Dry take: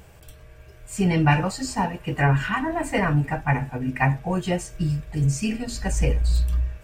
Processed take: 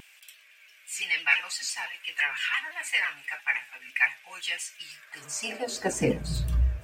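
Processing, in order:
high-pass filter sweep 2,400 Hz → 76 Hz, 0:04.87–0:06.65
pitch modulation by a square or saw wave saw down 5.9 Hz, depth 100 cents

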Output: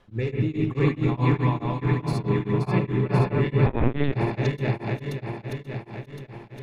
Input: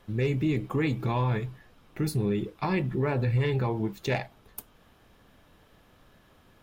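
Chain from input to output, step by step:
feedback delay that plays each chunk backwards 266 ms, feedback 79%, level 0 dB
high-frequency loss of the air 61 metres
convolution reverb, pre-delay 63 ms, DRR 3 dB
0:03.66–0:04.13: linear-prediction vocoder at 8 kHz pitch kept
tremolo along a rectified sine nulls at 4.7 Hz

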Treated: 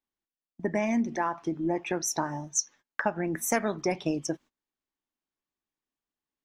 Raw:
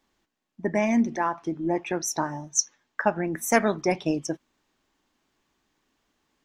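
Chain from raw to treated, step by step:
noise gate −46 dBFS, range −22 dB
downward compressor 2.5 to 1, threshold −25 dBFS, peak gain reduction 8 dB

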